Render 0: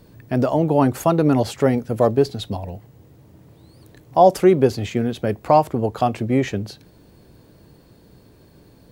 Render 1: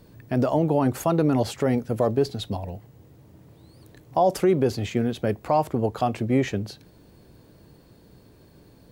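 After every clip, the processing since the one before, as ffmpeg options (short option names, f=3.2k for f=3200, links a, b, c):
-af "alimiter=limit=-9dB:level=0:latency=1:release=34,volume=-2.5dB"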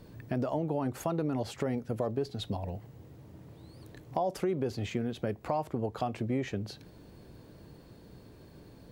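-af "acompressor=threshold=-33dB:ratio=2.5,highshelf=f=7.2k:g=-5.5"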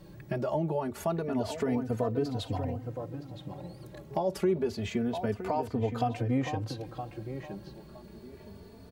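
-filter_complex "[0:a]asplit=2[a][b];[b]adelay=967,lowpass=f=2.3k:p=1,volume=-7.5dB,asplit=2[c][d];[d]adelay=967,lowpass=f=2.3k:p=1,volume=0.28,asplit=2[e][f];[f]adelay=967,lowpass=f=2.3k:p=1,volume=0.28[g];[a][c][e][g]amix=inputs=4:normalize=0,asplit=2[h][i];[i]adelay=3.2,afreqshift=0.27[j];[h][j]amix=inputs=2:normalize=1,volume=4.5dB"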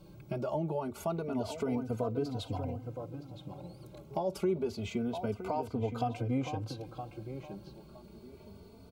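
-af "asuperstop=centerf=1800:order=8:qfactor=4.3,volume=-3.5dB"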